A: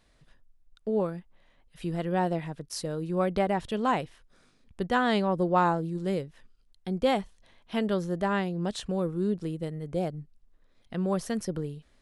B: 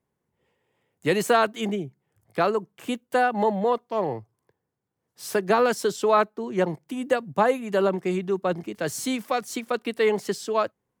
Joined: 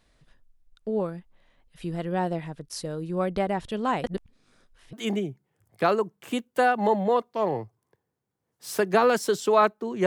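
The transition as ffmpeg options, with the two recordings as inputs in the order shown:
-filter_complex "[0:a]apad=whole_dur=10.06,atrim=end=10.06,asplit=2[s0][s1];[s0]atrim=end=4.042[s2];[s1]atrim=start=4.038:end=4.932,asetpts=PTS-STARTPTS,areverse[s3];[1:a]atrim=start=1.488:end=6.62[s4];[s2][s3]acrossfade=d=0.004:c1=hsin:c2=hsin[s5];[s5][s4]acrossfade=d=0.004:c1=hsin:c2=hsin"

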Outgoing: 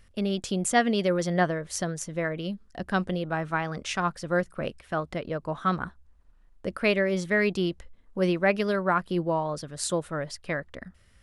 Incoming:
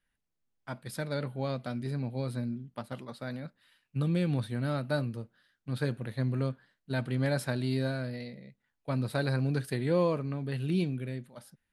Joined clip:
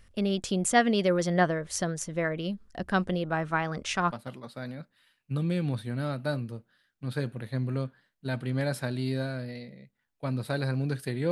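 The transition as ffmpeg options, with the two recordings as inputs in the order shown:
-filter_complex "[0:a]apad=whole_dur=11.31,atrim=end=11.31,atrim=end=4.122[s0];[1:a]atrim=start=2.768:end=9.96[s1];[s0][s1]acrossfade=d=0.004:c1=hsin:c2=hsin"

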